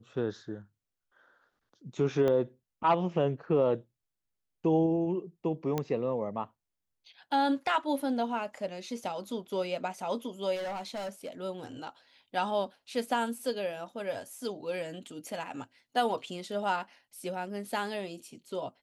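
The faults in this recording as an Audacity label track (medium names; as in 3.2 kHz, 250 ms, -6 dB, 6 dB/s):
2.280000	2.280000	pop -19 dBFS
5.780000	5.780000	pop -17 dBFS
10.550000	11.290000	clipped -33 dBFS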